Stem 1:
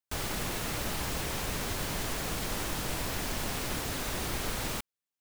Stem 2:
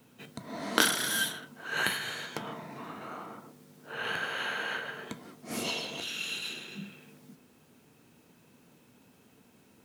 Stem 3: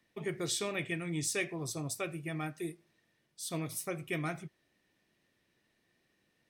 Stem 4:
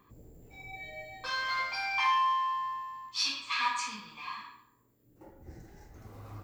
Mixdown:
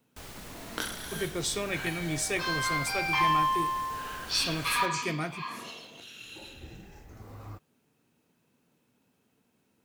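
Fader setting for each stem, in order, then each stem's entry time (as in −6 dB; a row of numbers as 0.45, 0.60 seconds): −11.0, −10.5, +3.0, +2.0 decibels; 0.05, 0.00, 0.95, 1.15 seconds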